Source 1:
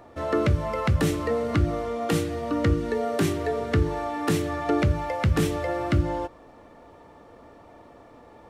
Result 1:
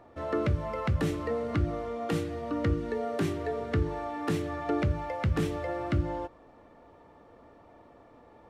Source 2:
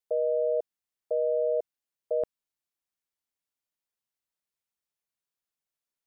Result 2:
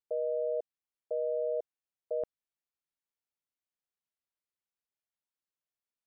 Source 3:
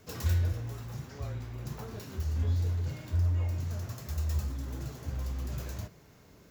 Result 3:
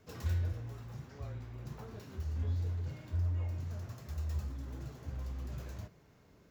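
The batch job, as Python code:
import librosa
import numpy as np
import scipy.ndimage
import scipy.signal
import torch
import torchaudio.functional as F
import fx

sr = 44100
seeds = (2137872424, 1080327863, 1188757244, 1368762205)

y = fx.high_shelf(x, sr, hz=5100.0, db=-8.5)
y = y * librosa.db_to_amplitude(-5.5)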